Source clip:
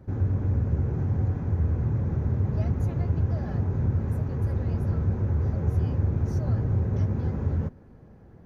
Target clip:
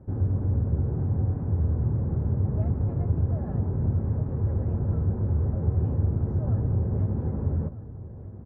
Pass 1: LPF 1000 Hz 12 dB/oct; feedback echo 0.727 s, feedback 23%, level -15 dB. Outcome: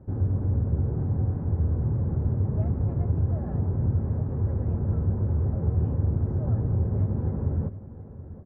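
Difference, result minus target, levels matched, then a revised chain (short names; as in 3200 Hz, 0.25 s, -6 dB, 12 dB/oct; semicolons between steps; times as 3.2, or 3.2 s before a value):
echo 0.518 s early
LPF 1000 Hz 12 dB/oct; feedback echo 1.245 s, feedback 23%, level -15 dB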